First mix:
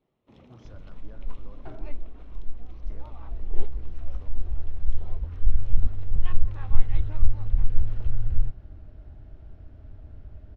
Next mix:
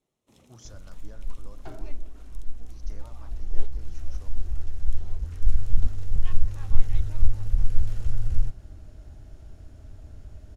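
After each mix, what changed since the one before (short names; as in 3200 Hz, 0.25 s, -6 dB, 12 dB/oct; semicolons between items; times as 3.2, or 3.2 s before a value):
first sound -6.5 dB; master: remove air absorption 320 m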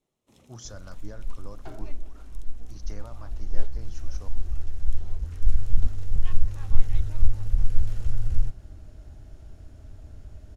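speech +7.0 dB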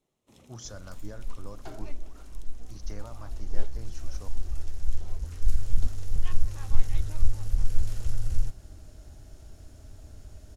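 first sound: send +8.0 dB; second sound: add tone controls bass -3 dB, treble +9 dB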